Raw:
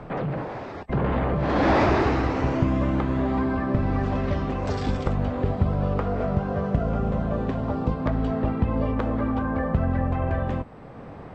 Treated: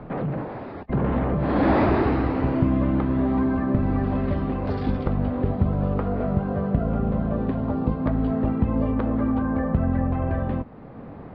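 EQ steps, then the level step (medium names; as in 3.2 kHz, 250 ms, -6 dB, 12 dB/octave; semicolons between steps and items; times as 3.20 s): distance through air 430 m; peaking EQ 240 Hz +4.5 dB 0.9 oct; peaking EQ 4.5 kHz +9 dB 0.65 oct; 0.0 dB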